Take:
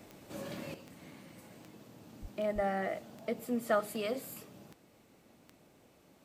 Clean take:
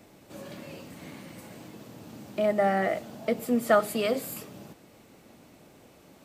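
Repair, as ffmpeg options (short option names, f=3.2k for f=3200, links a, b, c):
-filter_complex "[0:a]adeclick=t=4,asplit=3[a][b][c];[a]afade=t=out:st=2.21:d=0.02[d];[b]highpass=f=140:w=0.5412,highpass=f=140:w=1.3066,afade=t=in:st=2.21:d=0.02,afade=t=out:st=2.33:d=0.02[e];[c]afade=t=in:st=2.33:d=0.02[f];[d][e][f]amix=inputs=3:normalize=0,asplit=3[g][h][i];[g]afade=t=out:st=2.54:d=0.02[j];[h]highpass=f=140:w=0.5412,highpass=f=140:w=1.3066,afade=t=in:st=2.54:d=0.02,afade=t=out:st=2.66:d=0.02[k];[i]afade=t=in:st=2.66:d=0.02[l];[j][k][l]amix=inputs=3:normalize=0,asetnsamples=n=441:p=0,asendcmd='0.74 volume volume 8.5dB',volume=0dB"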